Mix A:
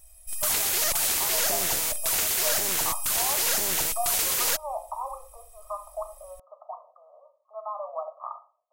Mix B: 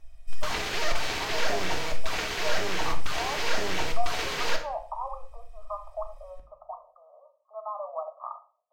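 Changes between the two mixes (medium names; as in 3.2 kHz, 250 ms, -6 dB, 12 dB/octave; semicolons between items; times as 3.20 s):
background: send on; master: add distance through air 210 m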